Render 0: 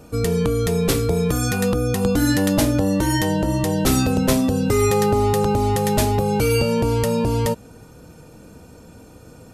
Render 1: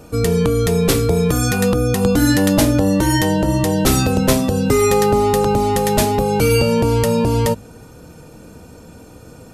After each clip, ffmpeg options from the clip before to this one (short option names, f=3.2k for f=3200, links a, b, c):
-af "bandreject=f=52.14:t=h:w=4,bandreject=f=104.28:t=h:w=4,bandreject=f=156.42:t=h:w=4,bandreject=f=208.56:t=h:w=4,bandreject=f=260.7:t=h:w=4,volume=4dB"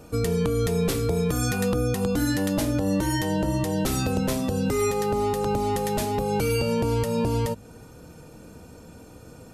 -af "alimiter=limit=-10dB:level=0:latency=1:release=242,volume=-5.5dB"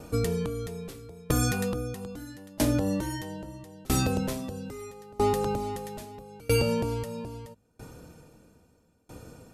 -af "aeval=exprs='val(0)*pow(10,-28*if(lt(mod(0.77*n/s,1),2*abs(0.77)/1000),1-mod(0.77*n/s,1)/(2*abs(0.77)/1000),(mod(0.77*n/s,1)-2*abs(0.77)/1000)/(1-2*abs(0.77)/1000))/20)':c=same,volume=2.5dB"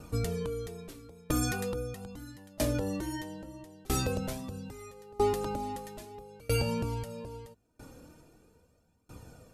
-af "flanger=delay=0.7:depth=3.1:regen=41:speed=0.44:shape=triangular"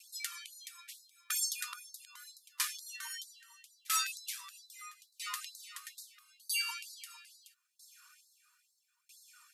-af "afftfilt=real='re*gte(b*sr/1024,940*pow(3800/940,0.5+0.5*sin(2*PI*2.2*pts/sr)))':imag='im*gte(b*sr/1024,940*pow(3800/940,0.5+0.5*sin(2*PI*2.2*pts/sr)))':win_size=1024:overlap=0.75,volume=4dB"